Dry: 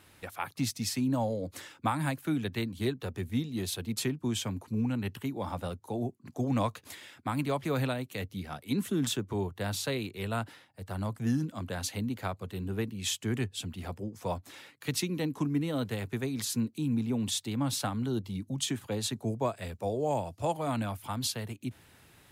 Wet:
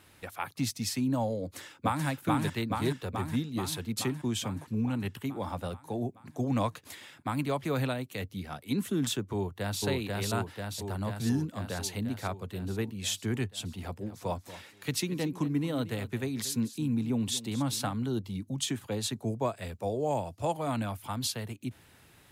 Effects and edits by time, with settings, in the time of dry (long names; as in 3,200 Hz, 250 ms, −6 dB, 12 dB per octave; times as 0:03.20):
0:01.41–0:02.06: delay throw 430 ms, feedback 70%, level −1 dB
0:09.33–0:09.82: delay throw 490 ms, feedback 70%, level −1 dB
0:13.83–0:17.93: single-tap delay 232 ms −15 dB